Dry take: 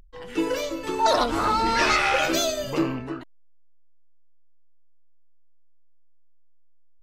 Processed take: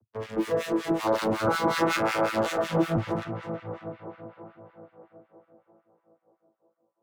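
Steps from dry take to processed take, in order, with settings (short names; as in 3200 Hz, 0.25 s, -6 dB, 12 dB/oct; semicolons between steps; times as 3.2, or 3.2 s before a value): arpeggiated vocoder bare fifth, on A2, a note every 0.491 s; bell 1400 Hz +3 dB; in parallel at -11 dB: fuzz box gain 43 dB, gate -43 dBFS; on the sum: tape echo 0.321 s, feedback 72%, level -5 dB, low-pass 2200 Hz; on a send at -10 dB: reverb RT60 3.7 s, pre-delay 38 ms; on the sum: harmonic tremolo 5.4 Hz, depth 100%, crossover 1300 Hz; gain -3.5 dB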